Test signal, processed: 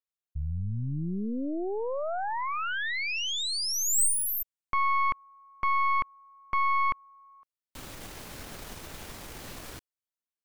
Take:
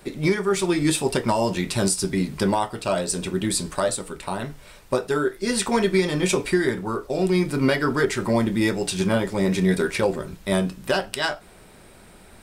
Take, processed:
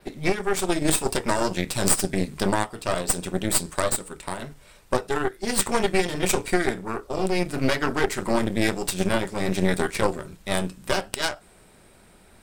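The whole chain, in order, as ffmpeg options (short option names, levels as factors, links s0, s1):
-af "adynamicequalizer=threshold=0.00562:dfrequency=8200:dqfactor=2.4:tfrequency=8200:tqfactor=2.4:attack=5:release=100:ratio=0.375:range=3.5:mode=boostabove:tftype=bell,aeval=exprs='clip(val(0),-1,0.0668)':c=same,aeval=exprs='0.794*(cos(1*acos(clip(val(0)/0.794,-1,1)))-cos(1*PI/2))+0.355*(cos(4*acos(clip(val(0)/0.794,-1,1)))-cos(4*PI/2))+0.00891*(cos(7*acos(clip(val(0)/0.794,-1,1)))-cos(7*PI/2))+0.0631*(cos(8*acos(clip(val(0)/0.794,-1,1)))-cos(8*PI/2))':c=same,volume=0.596"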